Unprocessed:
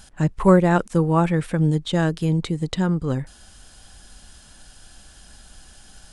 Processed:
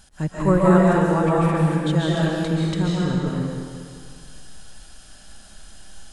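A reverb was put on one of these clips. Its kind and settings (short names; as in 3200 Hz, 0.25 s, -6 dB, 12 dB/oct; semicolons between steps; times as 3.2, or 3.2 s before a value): digital reverb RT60 2.1 s, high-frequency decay 0.95×, pre-delay 0.1 s, DRR -5.5 dB; gain -5 dB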